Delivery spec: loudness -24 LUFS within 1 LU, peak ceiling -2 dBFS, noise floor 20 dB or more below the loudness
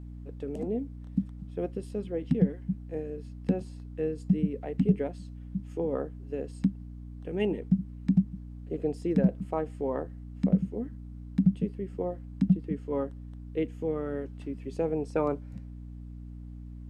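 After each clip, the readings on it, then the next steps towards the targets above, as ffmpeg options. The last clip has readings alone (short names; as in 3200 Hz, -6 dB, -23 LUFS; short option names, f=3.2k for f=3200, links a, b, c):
hum 60 Hz; harmonics up to 300 Hz; hum level -40 dBFS; loudness -31.5 LUFS; peak -11.5 dBFS; loudness target -24.0 LUFS
-> -af "bandreject=f=60:t=h:w=4,bandreject=f=120:t=h:w=4,bandreject=f=180:t=h:w=4,bandreject=f=240:t=h:w=4,bandreject=f=300:t=h:w=4"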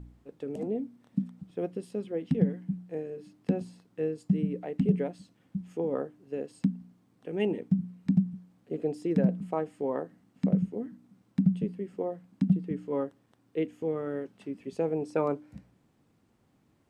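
hum none; loudness -32.0 LUFS; peak -12.0 dBFS; loudness target -24.0 LUFS
-> -af "volume=8dB"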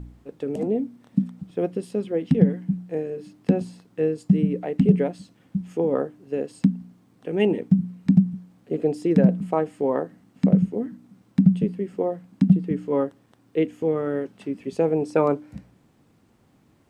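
loudness -24.0 LUFS; peak -4.0 dBFS; noise floor -60 dBFS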